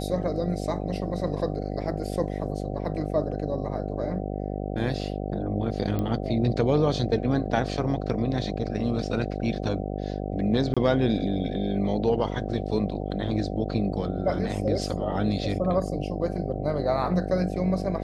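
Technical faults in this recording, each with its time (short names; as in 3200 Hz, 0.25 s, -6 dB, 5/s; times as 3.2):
buzz 50 Hz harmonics 15 -31 dBFS
5.99 pop -17 dBFS
10.74–10.77 gap 26 ms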